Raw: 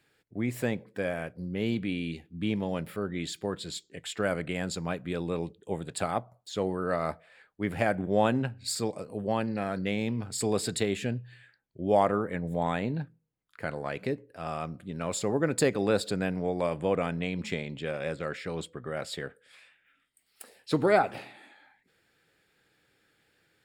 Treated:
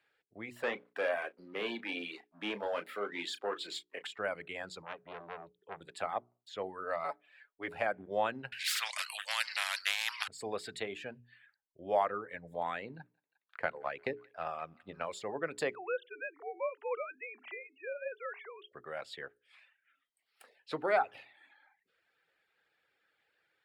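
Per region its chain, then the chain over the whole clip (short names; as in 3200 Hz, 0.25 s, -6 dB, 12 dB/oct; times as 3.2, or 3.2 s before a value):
0.63–4.07 HPF 240 Hz 24 dB/oct + sample leveller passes 2 + doubler 34 ms -8.5 dB
4.82–5.81 air absorption 210 m + core saturation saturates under 1500 Hz
7.04–7.68 bell 130 Hz -10 dB 0.98 oct + comb 7 ms, depth 94%
8.52–10.28 inverse Chebyshev high-pass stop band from 430 Hz, stop band 60 dB + band shelf 5100 Hz +13.5 dB 2.9 oct + spectral compressor 4:1
12.88–15.06 high shelf 7500 Hz -11.5 dB + transient shaper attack +8 dB, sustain 0 dB + thinning echo 0.177 s, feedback 68%, high-pass 1000 Hz, level -17 dB
15.75–18.72 sine-wave speech + HPF 520 Hz
whole clip: reverb removal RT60 0.67 s; three-band isolator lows -15 dB, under 470 Hz, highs -14 dB, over 3800 Hz; notches 60/120/180/240/300/360/420 Hz; gain -3.5 dB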